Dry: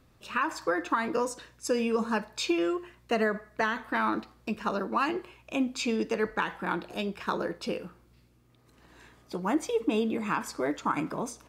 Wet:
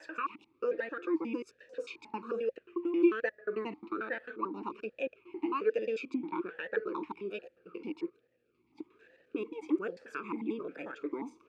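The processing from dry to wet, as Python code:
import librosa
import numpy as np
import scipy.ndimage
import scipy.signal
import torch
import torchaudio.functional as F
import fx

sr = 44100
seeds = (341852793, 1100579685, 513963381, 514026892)

y = fx.block_reorder(x, sr, ms=89.0, group=7)
y = fx.vowel_sweep(y, sr, vowels='e-u', hz=1.2)
y = F.gain(torch.from_numpy(y), 4.5).numpy()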